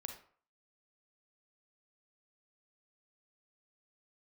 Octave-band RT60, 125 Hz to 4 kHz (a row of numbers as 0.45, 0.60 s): 0.45, 0.45, 0.45, 0.50, 0.45, 0.30 s